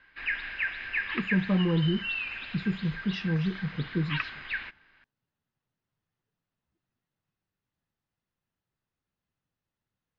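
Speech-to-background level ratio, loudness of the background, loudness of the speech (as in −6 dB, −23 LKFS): 4.0 dB, −34.0 LKFS, −30.0 LKFS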